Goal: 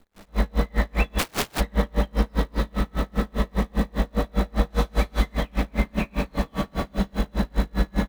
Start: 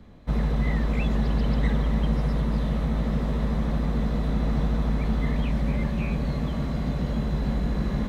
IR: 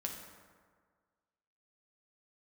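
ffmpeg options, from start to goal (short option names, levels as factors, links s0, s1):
-filter_complex "[0:a]asettb=1/sr,asplit=3[s0][s1][s2];[s0]atrim=end=3.324[s3];[s1]atrim=start=3.32:end=3.96,asetpts=PTS-STARTPTS,afade=t=in:d=0.004:c=qsin,afade=t=out:st=0.636:d=0.004:c=qsin,bandreject=f=1400:w=7.1[s4];[s2]atrim=start=3.956[s5];[s3][s4]acrossfade=d=0.004:c1=hsin:c2=qsin[s6];[s6][s5]acrossfade=d=0.004:c1=qsin:c2=hsin,asettb=1/sr,asplit=3[s7][s8][s9];[s7]atrim=end=4.704[s10];[s8]atrim=start=4.7:end=5.33,asetpts=PTS-STARTPTS,afade=t=in:d=0.004:c=qsin,afade=t=out:st=0.626:d=0.004:c=qsin,highshelf=f=4200:g=11[s11];[s9]atrim=start=5.326[s12];[s10][s11]acrossfade=d=0.004:c1=hsin:c2=qsin[s13];[s13][s12]acrossfade=d=0.004:c1=qsin:c2=hsin,asplit=2[s14][s15];[s15]adelay=116,lowpass=f=1800:p=1,volume=0.447,asplit=2[s16][s17];[s17]adelay=116,lowpass=f=1800:p=1,volume=0.49,asplit=2[s18][s19];[s19]adelay=116,lowpass=f=1800:p=1,volume=0.49,asplit=2[s20][s21];[s21]adelay=116,lowpass=f=1800:p=1,volume=0.49,asplit=2[s22][s23];[s23]adelay=116,lowpass=f=1800:p=1,volume=0.49,asplit=2[s24][s25];[s25]adelay=116,lowpass=f=1800:p=1,volume=0.49[s26];[s14][s16][s18][s20][s22][s24][s26]amix=inputs=7:normalize=0[s27];[1:a]atrim=start_sample=2205[s28];[s27][s28]afir=irnorm=-1:irlink=0,dynaudnorm=f=110:g=3:m=3.16,acrusher=bits=8:dc=4:mix=0:aa=0.000001,equalizer=f=120:w=0.51:g=-11.5,asplit=3[s29][s30][s31];[s29]afade=t=out:st=1.18:d=0.02[s32];[s30]aeval=exprs='(mod(8.91*val(0)+1,2)-1)/8.91':c=same,afade=t=in:st=1.18:d=0.02,afade=t=out:st=1.59:d=0.02[s33];[s31]afade=t=in:st=1.59:d=0.02[s34];[s32][s33][s34]amix=inputs=3:normalize=0,aeval=exprs='val(0)*pow(10,-36*(0.5-0.5*cos(2*PI*5*n/s))/20)':c=same,volume=1.33"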